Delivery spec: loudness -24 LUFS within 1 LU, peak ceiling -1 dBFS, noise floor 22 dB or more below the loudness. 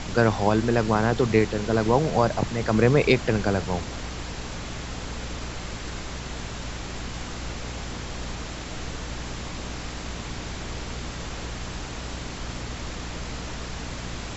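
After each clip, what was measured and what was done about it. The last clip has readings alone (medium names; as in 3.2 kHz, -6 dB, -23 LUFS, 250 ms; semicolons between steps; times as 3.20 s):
hum 60 Hz; highest harmonic 300 Hz; hum level -35 dBFS; noise floor -35 dBFS; noise floor target -50 dBFS; loudness -27.5 LUFS; peak level -5.5 dBFS; loudness target -24.0 LUFS
-> hum notches 60/120/180/240/300 Hz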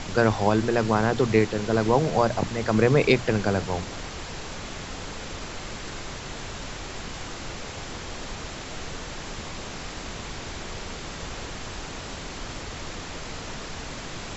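hum not found; noise floor -37 dBFS; noise floor target -50 dBFS
-> noise print and reduce 13 dB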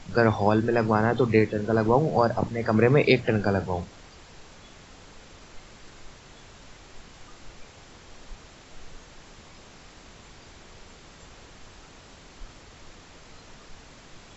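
noise floor -50 dBFS; loudness -23.0 LUFS; peak level -5.5 dBFS; loudness target -24.0 LUFS
-> trim -1 dB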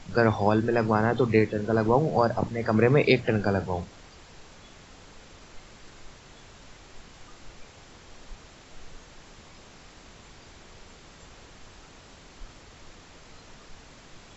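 loudness -24.0 LUFS; peak level -6.5 dBFS; noise floor -51 dBFS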